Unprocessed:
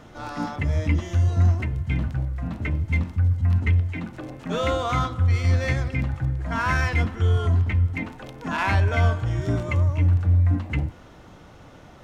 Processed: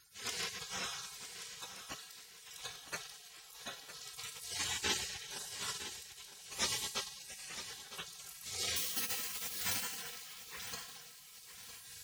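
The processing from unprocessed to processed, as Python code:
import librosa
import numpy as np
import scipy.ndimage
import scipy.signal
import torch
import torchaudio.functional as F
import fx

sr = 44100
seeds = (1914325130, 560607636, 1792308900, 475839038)

y = fx.spec_dropout(x, sr, seeds[0], share_pct=29)
y = fx.recorder_agc(y, sr, target_db=-16.0, rise_db_per_s=10.0, max_gain_db=30)
y = fx.resample_bad(y, sr, factor=6, down='filtered', up='hold', at=(8.76, 9.87))
y = scipy.signal.sosfilt(scipy.signal.butter(2, 510.0, 'highpass', fs=sr, output='sos'), y)
y = y + 0.98 * np.pad(y, (int(3.4 * sr / 1000.0), 0))[:len(y)]
y = fx.rev_fdn(y, sr, rt60_s=1.4, lf_ratio=1.6, hf_ratio=0.7, size_ms=15.0, drr_db=1.5)
y = fx.spec_gate(y, sr, threshold_db=-30, keep='weak')
y = fx.echo_feedback(y, sr, ms=958, feedback_pct=36, wet_db=-12.0)
y = y * 10.0 ** (7.5 / 20.0)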